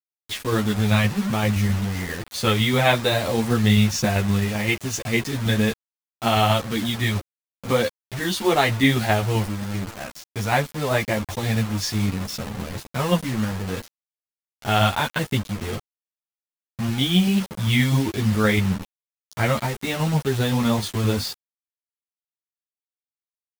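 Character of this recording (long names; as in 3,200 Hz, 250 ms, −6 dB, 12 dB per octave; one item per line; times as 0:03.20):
tremolo saw down 7.7 Hz, depth 35%
a quantiser's noise floor 6 bits, dither none
a shimmering, thickened sound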